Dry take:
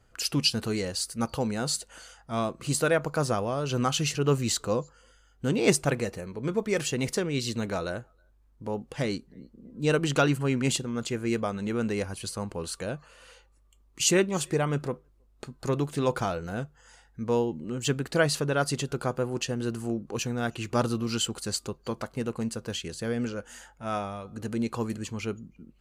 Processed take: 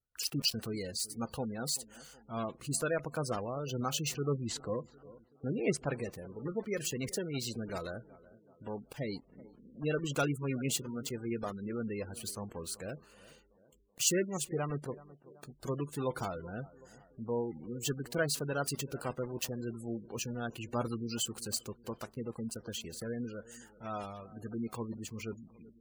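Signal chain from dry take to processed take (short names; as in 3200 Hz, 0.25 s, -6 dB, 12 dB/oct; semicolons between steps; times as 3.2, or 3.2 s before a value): block floating point 3-bit; high shelf 5800 Hz +6 dB, from 4.14 s -6 dB, from 5.98 s +7 dB; gate with hold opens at -50 dBFS; tape echo 0.378 s, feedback 58%, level -18 dB, low-pass 1500 Hz; spectral gate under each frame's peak -20 dB strong; gain -8.5 dB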